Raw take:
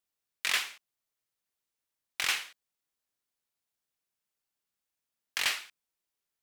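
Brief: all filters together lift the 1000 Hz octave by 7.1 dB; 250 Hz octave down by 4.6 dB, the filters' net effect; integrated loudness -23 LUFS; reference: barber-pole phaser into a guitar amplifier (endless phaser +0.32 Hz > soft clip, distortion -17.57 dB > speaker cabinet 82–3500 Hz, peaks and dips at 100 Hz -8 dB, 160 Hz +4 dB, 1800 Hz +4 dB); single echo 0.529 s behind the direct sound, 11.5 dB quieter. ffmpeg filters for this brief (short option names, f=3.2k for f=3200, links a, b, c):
-filter_complex "[0:a]equalizer=f=250:t=o:g=-8,equalizer=f=1k:t=o:g=9,aecho=1:1:529:0.266,asplit=2[a][b];[b]afreqshift=0.32[c];[a][c]amix=inputs=2:normalize=1,asoftclip=threshold=-21dB,highpass=82,equalizer=f=100:t=q:w=4:g=-8,equalizer=f=160:t=q:w=4:g=4,equalizer=f=1.8k:t=q:w=4:g=4,lowpass=f=3.5k:w=0.5412,lowpass=f=3.5k:w=1.3066,volume=13.5dB"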